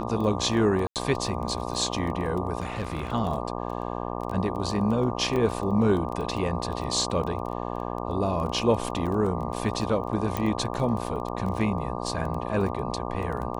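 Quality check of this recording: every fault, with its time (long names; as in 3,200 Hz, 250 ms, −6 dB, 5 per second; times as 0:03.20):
mains buzz 60 Hz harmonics 20 −32 dBFS
surface crackle 16 per second −31 dBFS
0:00.87–0:00.96: drop-out 88 ms
0:02.60–0:03.12: clipping −24.5 dBFS
0:05.36: drop-out 4.5 ms
0:10.37: click −13 dBFS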